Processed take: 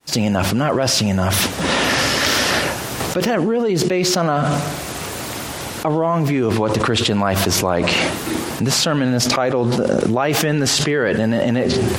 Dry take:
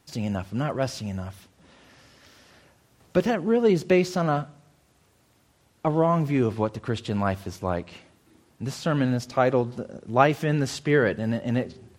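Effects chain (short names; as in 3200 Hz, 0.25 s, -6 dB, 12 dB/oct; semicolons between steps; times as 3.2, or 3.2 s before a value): opening faded in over 0.93 s; low shelf 160 Hz -9.5 dB; fast leveller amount 100%; gain -2.5 dB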